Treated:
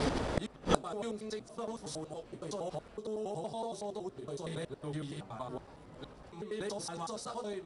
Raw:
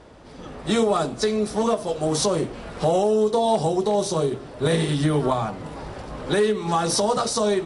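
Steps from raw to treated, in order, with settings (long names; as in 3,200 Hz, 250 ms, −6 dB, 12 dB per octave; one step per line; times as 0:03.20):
slices reordered back to front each 93 ms, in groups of 4
gate with flip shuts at −28 dBFS, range −31 dB
level +12.5 dB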